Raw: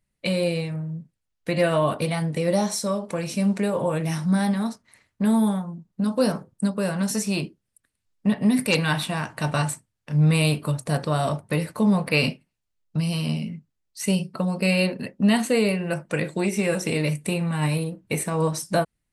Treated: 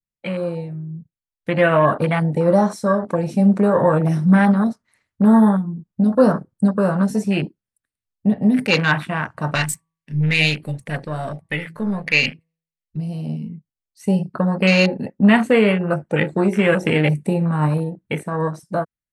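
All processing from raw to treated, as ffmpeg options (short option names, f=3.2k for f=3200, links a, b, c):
-filter_complex "[0:a]asettb=1/sr,asplit=3[a][b][c];[a]atrim=end=9.554[d];[b]atrim=start=9.55:end=12.97,asetpts=PTS-STARTPTS,afade=t=in:d=0.004:c=qsin,afade=t=out:st=3.416:d=0.004:c=qsin,aeval=exprs='if(lt(val(0),0),0.708*val(0),val(0))':c=same,highshelf=f=1.6k:t=q:w=3:g=6,bandreject=f=162.9:t=h:w=4,bandreject=f=325.8:t=h:w=4,bandreject=f=488.7:t=h:w=4,bandreject=f=651.6:t=h:w=4,bandreject=f=814.5:t=h:w=4,bandreject=f=977.4:t=h:w=4,bandreject=f=1.1403k:t=h:w=4[e];[c]atrim=start=12.966[f];[d][e]acrossfade=d=0.004:c1=hsin:c2=qsin[g];[g][f]acrossfade=d=0.004:c1=qsin:c2=hsin,afwtdn=0.0282,adynamicequalizer=threshold=0.00891:dfrequency=1500:dqfactor=1.2:tfrequency=1500:tqfactor=1.2:attack=5:release=100:ratio=0.375:range=3:mode=boostabove:tftype=bell,dynaudnorm=f=140:g=21:m=11.5dB,volume=-1dB"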